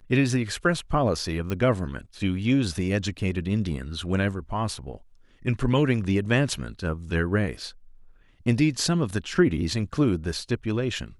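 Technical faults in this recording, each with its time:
1.5 pop -17 dBFS

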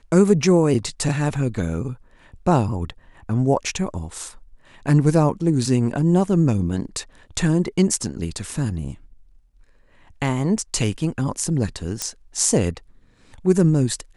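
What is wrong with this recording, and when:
12.02 pop -8 dBFS

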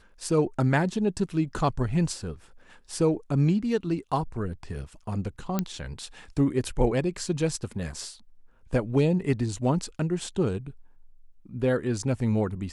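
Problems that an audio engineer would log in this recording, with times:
5.59 pop -12 dBFS

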